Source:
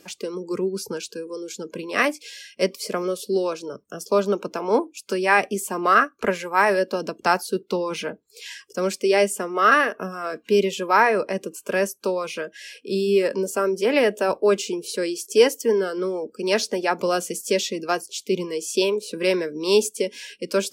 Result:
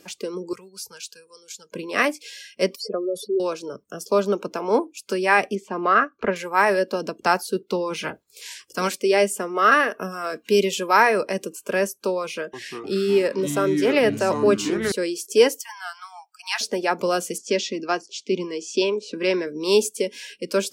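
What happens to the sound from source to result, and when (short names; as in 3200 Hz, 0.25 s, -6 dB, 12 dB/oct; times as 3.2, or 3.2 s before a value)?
0.53–1.72 passive tone stack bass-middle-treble 10-0-10
2.76–3.4 spectral contrast raised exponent 2.8
5.55–6.36 air absorption 210 m
8.02–8.95 spectral limiter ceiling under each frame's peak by 17 dB
9.91–11.53 high shelf 3400 Hz +7 dB
12.23–14.92 echoes that change speed 0.302 s, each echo -5 st, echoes 3, each echo -6 dB
15.61–16.61 brick-wall FIR high-pass 690 Hz
17.38–19.47 speaker cabinet 170–6400 Hz, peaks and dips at 270 Hz +6 dB, 490 Hz -4 dB, 3900 Hz -3 dB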